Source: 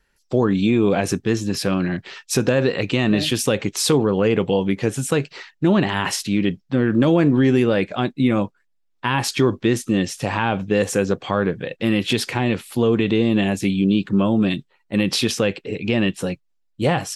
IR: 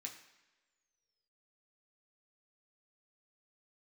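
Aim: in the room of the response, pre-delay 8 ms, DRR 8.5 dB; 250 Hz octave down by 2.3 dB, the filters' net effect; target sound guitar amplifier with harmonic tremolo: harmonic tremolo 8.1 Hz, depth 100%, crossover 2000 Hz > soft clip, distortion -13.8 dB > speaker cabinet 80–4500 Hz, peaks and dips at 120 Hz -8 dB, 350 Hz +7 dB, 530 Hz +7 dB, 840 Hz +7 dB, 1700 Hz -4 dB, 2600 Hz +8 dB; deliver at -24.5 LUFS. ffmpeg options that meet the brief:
-filter_complex "[0:a]equalizer=f=250:t=o:g=-7,asplit=2[a][b];[1:a]atrim=start_sample=2205,adelay=8[c];[b][c]afir=irnorm=-1:irlink=0,volume=-5dB[d];[a][d]amix=inputs=2:normalize=0,acrossover=split=2000[e][f];[e]aeval=exprs='val(0)*(1-1/2+1/2*cos(2*PI*8.1*n/s))':c=same[g];[f]aeval=exprs='val(0)*(1-1/2-1/2*cos(2*PI*8.1*n/s))':c=same[h];[g][h]amix=inputs=2:normalize=0,asoftclip=threshold=-18dB,highpass=80,equalizer=f=120:t=q:w=4:g=-8,equalizer=f=350:t=q:w=4:g=7,equalizer=f=530:t=q:w=4:g=7,equalizer=f=840:t=q:w=4:g=7,equalizer=f=1.7k:t=q:w=4:g=-4,equalizer=f=2.6k:t=q:w=4:g=8,lowpass=f=4.5k:w=0.5412,lowpass=f=4.5k:w=1.3066,volume=1dB"

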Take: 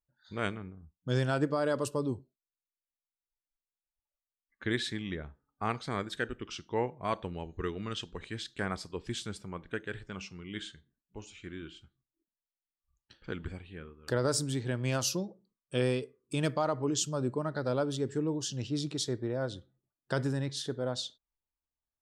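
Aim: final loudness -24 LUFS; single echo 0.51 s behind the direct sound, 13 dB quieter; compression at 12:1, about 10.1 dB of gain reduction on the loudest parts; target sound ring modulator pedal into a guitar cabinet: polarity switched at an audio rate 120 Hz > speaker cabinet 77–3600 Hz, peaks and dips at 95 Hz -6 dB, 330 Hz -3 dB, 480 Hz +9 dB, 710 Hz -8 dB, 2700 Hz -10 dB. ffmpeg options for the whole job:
-af "acompressor=threshold=-34dB:ratio=12,aecho=1:1:510:0.224,aeval=exprs='val(0)*sgn(sin(2*PI*120*n/s))':c=same,highpass=77,equalizer=f=95:t=q:w=4:g=-6,equalizer=f=330:t=q:w=4:g=-3,equalizer=f=480:t=q:w=4:g=9,equalizer=f=710:t=q:w=4:g=-8,equalizer=f=2.7k:t=q:w=4:g=-10,lowpass=f=3.6k:w=0.5412,lowpass=f=3.6k:w=1.3066,volume=17dB"

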